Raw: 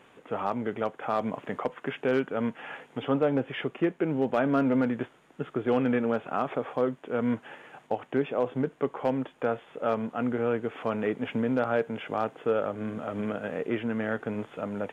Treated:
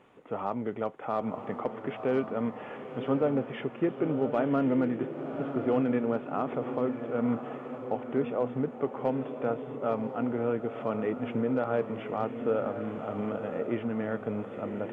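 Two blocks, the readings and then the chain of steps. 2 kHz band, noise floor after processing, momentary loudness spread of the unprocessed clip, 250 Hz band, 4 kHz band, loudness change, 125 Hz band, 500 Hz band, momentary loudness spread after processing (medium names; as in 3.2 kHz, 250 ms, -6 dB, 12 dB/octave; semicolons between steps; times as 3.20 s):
-6.5 dB, -43 dBFS, 9 LU, -1.0 dB, no reading, -1.5 dB, -1.0 dB, -1.5 dB, 8 LU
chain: treble shelf 2.3 kHz -10 dB; band-stop 1.6 kHz, Q 11; on a send: echo that smears into a reverb 1033 ms, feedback 43%, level -8 dB; on the sum: trim -1.5 dB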